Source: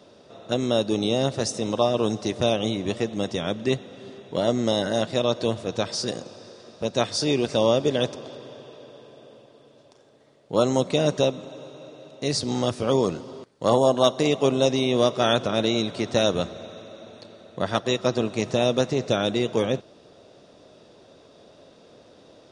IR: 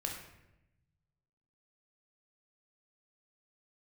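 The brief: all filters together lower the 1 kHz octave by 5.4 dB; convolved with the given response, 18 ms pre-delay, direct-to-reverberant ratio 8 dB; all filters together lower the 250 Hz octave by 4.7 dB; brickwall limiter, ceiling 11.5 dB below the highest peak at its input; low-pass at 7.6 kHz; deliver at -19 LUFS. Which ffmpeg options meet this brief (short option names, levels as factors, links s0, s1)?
-filter_complex "[0:a]lowpass=7600,equalizer=f=250:t=o:g=-5.5,equalizer=f=1000:t=o:g=-7.5,alimiter=limit=0.106:level=0:latency=1,asplit=2[s0][s1];[1:a]atrim=start_sample=2205,adelay=18[s2];[s1][s2]afir=irnorm=-1:irlink=0,volume=0.335[s3];[s0][s3]amix=inputs=2:normalize=0,volume=3.98"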